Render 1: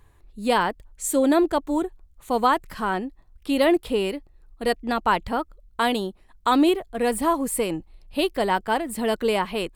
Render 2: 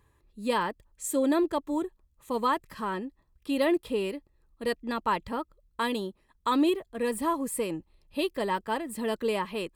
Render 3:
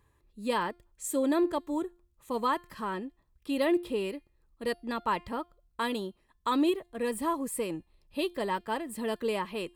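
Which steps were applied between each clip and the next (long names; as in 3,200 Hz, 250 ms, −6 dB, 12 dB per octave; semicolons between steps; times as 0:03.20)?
notch comb filter 730 Hz; level −5.5 dB
tuned comb filter 350 Hz, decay 0.42 s, harmonics all, mix 40%; level +2 dB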